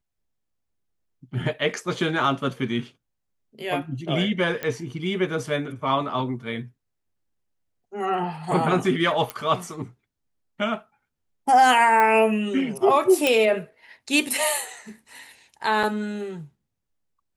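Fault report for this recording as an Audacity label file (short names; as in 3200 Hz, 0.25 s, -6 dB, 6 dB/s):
4.630000	4.630000	pop -14 dBFS
9.300000	9.300000	pop -12 dBFS
12.000000	12.000000	pop -10 dBFS
13.270000	13.270000	pop -6 dBFS
15.830000	15.840000	gap 5.3 ms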